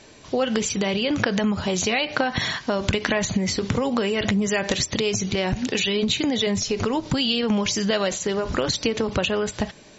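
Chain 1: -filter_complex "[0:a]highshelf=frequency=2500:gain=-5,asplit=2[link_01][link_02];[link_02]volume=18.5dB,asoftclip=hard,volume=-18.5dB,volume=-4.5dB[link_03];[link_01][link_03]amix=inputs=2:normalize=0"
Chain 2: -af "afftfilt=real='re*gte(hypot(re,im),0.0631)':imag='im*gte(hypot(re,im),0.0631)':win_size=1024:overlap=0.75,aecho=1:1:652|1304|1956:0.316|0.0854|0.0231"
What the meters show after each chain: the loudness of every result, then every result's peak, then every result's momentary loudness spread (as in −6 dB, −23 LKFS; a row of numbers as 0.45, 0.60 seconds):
−20.5, −23.5 LKFS; −4.0, −4.5 dBFS; 3, 3 LU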